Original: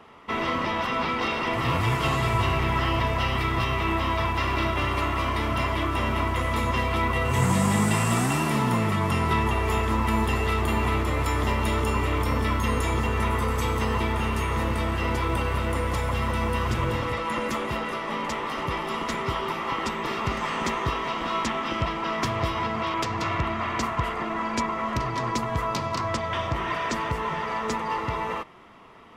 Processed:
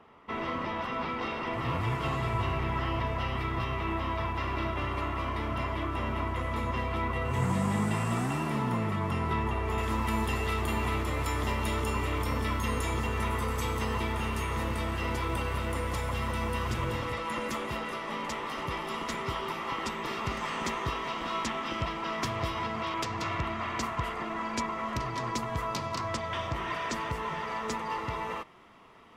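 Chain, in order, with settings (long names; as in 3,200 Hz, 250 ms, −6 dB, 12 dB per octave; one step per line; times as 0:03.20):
high-shelf EQ 3,300 Hz −8.5 dB, from 0:09.78 +3.5 dB
level −6 dB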